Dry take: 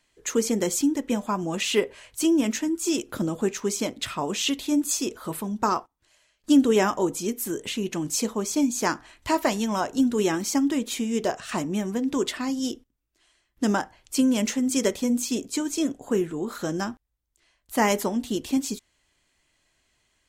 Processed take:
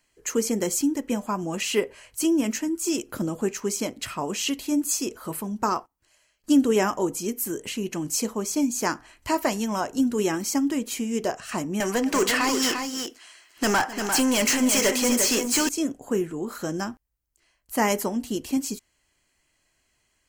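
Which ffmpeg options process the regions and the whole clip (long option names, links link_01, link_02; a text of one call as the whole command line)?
ffmpeg -i in.wav -filter_complex "[0:a]asettb=1/sr,asplit=3[link_01][link_02][link_03];[link_01]atrim=end=11.804[link_04];[link_02]atrim=start=11.8:end=15.69,asetpts=PTS-STARTPTS,afade=type=in:duration=0.004:curve=qsin,afade=type=out:start_time=3.886:duration=0.004:curve=qsin,lowshelf=frequency=390:gain=-9,asplit=2[link_05][link_06];[link_06]highpass=frequency=720:poles=1,volume=25dB,asoftclip=type=tanh:threshold=-12.5dB[link_07];[link_05][link_07]amix=inputs=2:normalize=0,lowpass=frequency=5800:poles=1,volume=-6dB,aecho=1:1:259|348:0.141|0.473,atrim=end_sample=171549[link_08];[link_03]atrim=start=15.686[link_09];[link_04][link_08]acrossfade=duration=0.004:curve1=hsin:curve2=qsin[link_10];[link_10][link_09]acrossfade=duration=0.004:curve1=qsin:curve2=hsin,highshelf=frequency=11000:gain=7,bandreject=frequency=3600:width=5.2,volume=-1dB" out.wav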